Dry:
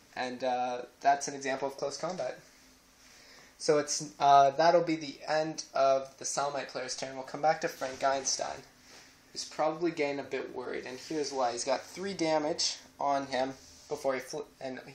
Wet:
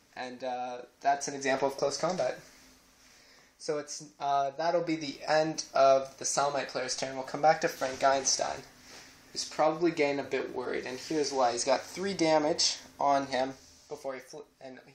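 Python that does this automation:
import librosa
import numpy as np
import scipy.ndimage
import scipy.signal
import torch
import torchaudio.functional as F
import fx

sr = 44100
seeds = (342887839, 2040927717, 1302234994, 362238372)

y = fx.gain(x, sr, db=fx.line((0.93, -4.0), (1.55, 5.0), (2.24, 5.0), (3.84, -7.5), (4.59, -7.5), (5.08, 3.5), (13.16, 3.5), (14.15, -7.0)))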